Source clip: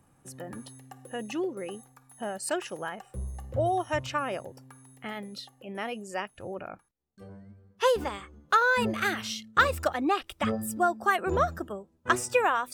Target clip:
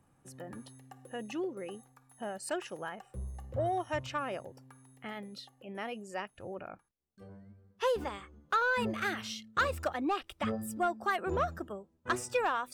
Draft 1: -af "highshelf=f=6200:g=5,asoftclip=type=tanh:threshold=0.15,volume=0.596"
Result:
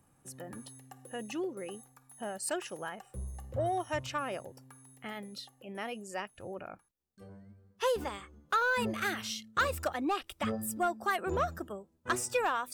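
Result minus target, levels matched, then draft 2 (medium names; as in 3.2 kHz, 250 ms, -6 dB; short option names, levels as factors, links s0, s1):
8 kHz band +5.5 dB
-af "highshelf=f=6200:g=-4.5,asoftclip=type=tanh:threshold=0.15,volume=0.596"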